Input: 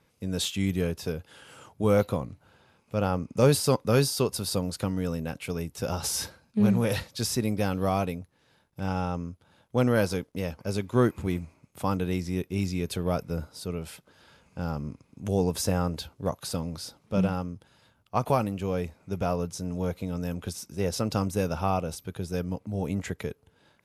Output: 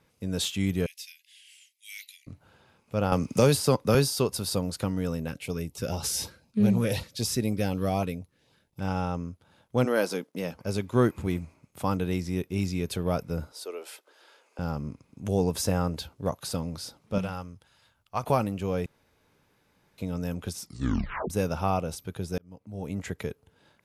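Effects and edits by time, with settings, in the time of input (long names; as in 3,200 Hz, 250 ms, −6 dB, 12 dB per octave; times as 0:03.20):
0:00.86–0:02.27: Butterworth high-pass 2,000 Hz 72 dB per octave
0:03.12–0:03.95: multiband upward and downward compressor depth 70%
0:05.28–0:08.81: auto-filter notch saw up 4 Hz 620–1,900 Hz
0:09.84–0:10.54: high-pass filter 290 Hz → 130 Hz 24 dB per octave
0:13.52–0:14.59: Butterworth high-pass 340 Hz
0:17.18–0:18.23: parametric band 250 Hz −9.5 dB 2.8 octaves
0:18.86–0:19.98: fill with room tone
0:20.60: tape stop 0.70 s
0:22.38–0:23.21: fade in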